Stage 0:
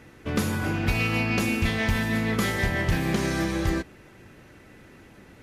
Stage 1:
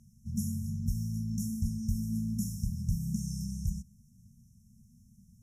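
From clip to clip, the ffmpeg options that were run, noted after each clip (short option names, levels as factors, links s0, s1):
-af "afftfilt=real='re*(1-between(b*sr/4096,240,5300))':imag='im*(1-between(b*sr/4096,240,5300))':win_size=4096:overlap=0.75,volume=0.531"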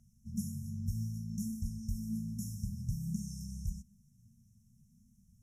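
-af "flanger=delay=1.4:depth=8.7:regen=49:speed=0.56:shape=triangular,volume=0.891"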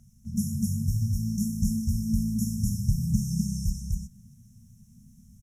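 -af "aecho=1:1:29.15|250.7:0.251|0.891,volume=2.82"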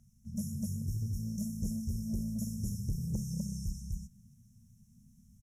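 -af "asoftclip=type=tanh:threshold=0.119,volume=0.422"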